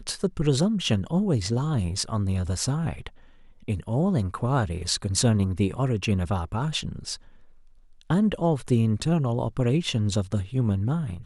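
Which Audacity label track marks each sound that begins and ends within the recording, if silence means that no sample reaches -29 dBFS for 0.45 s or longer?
3.680000	7.150000	sound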